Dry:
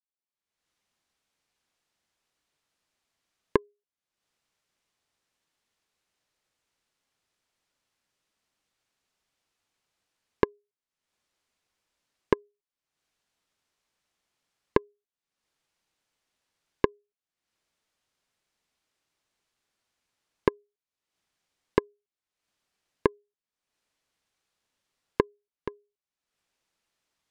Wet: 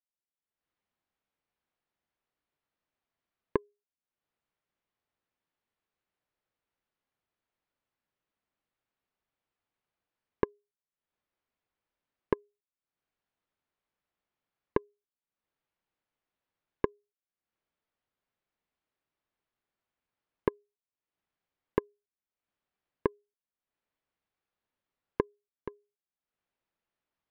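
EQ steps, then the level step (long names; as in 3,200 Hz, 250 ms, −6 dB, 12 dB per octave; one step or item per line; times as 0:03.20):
low-pass filter 4,300 Hz
high-shelf EQ 3,000 Hz −11 dB
−5.0 dB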